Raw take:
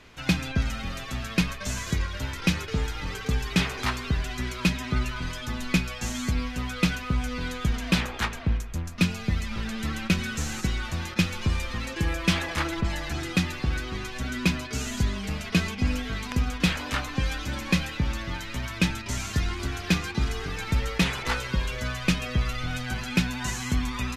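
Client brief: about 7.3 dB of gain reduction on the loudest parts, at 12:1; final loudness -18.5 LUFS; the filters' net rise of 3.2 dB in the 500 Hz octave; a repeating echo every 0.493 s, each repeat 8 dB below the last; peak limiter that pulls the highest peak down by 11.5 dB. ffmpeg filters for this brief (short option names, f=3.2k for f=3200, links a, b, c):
-af "equalizer=f=500:t=o:g=4,acompressor=threshold=-24dB:ratio=12,alimiter=limit=-22.5dB:level=0:latency=1,aecho=1:1:493|986|1479|1972|2465:0.398|0.159|0.0637|0.0255|0.0102,volume=14dB"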